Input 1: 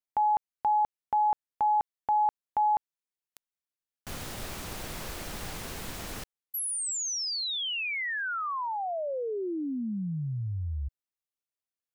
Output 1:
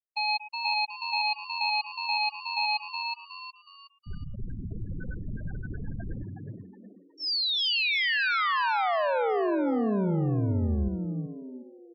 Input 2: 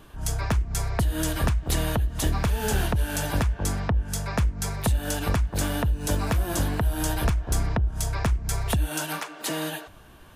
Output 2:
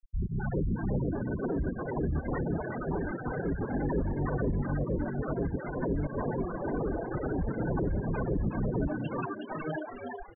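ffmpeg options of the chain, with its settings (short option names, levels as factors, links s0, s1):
-filter_complex "[0:a]aeval=exprs='0.0266*(abs(mod(val(0)/0.0266+3,4)-2)-1)':c=same,aresample=11025,aresample=44100,aeval=exprs='val(0)+0.002*sin(2*PI*1500*n/s)':c=same,asplit=2[s0][s1];[s1]aecho=0:1:116|232|348|464|580:0.251|0.121|0.0579|0.0278|0.0133[s2];[s0][s2]amix=inputs=2:normalize=0,afftfilt=real='re*gte(hypot(re,im),0.0447)':imag='im*gte(hypot(re,im),0.0447)':win_size=1024:overlap=0.75,asplit=2[s3][s4];[s4]asplit=4[s5][s6][s7][s8];[s5]adelay=367,afreqshift=90,volume=0.562[s9];[s6]adelay=734,afreqshift=180,volume=0.191[s10];[s7]adelay=1101,afreqshift=270,volume=0.0653[s11];[s8]adelay=1468,afreqshift=360,volume=0.0221[s12];[s9][s10][s11][s12]amix=inputs=4:normalize=0[s13];[s3][s13]amix=inputs=2:normalize=0,volume=2.37"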